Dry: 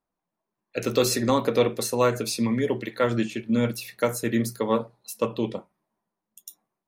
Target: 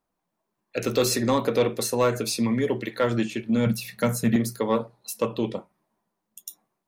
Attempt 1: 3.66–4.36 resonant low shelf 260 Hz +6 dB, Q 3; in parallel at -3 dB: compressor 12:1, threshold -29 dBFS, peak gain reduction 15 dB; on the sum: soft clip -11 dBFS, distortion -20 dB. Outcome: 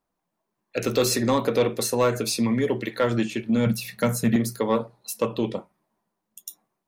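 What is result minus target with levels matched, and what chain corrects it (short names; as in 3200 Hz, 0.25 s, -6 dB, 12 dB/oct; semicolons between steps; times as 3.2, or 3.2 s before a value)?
compressor: peak gain reduction -7.5 dB
3.66–4.36 resonant low shelf 260 Hz +6 dB, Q 3; in parallel at -3 dB: compressor 12:1, threshold -37 dBFS, peak gain reduction 22.5 dB; on the sum: soft clip -11 dBFS, distortion -21 dB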